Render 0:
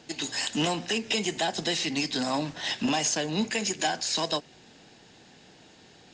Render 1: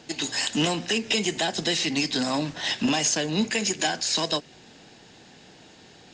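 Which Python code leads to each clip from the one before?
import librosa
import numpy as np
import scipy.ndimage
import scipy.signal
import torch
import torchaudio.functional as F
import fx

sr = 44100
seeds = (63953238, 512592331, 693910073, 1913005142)

y = fx.dynamic_eq(x, sr, hz=820.0, q=1.6, threshold_db=-39.0, ratio=4.0, max_db=-4)
y = y * 10.0 ** (3.5 / 20.0)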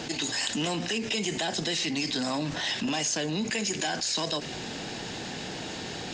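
y = fx.env_flatten(x, sr, amount_pct=70)
y = y * 10.0 ** (-7.5 / 20.0)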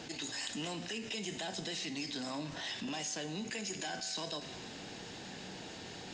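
y = fx.comb_fb(x, sr, f0_hz=95.0, decay_s=1.6, harmonics='all', damping=0.0, mix_pct=70)
y = y * 10.0 ** (-1.0 / 20.0)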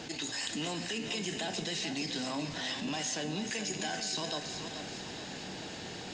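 y = fx.echo_feedback(x, sr, ms=429, feedback_pct=51, wet_db=-8.5)
y = y * 10.0 ** (3.5 / 20.0)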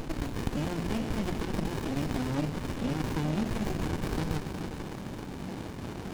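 y = fx.running_max(x, sr, window=65)
y = y * 10.0 ** (8.0 / 20.0)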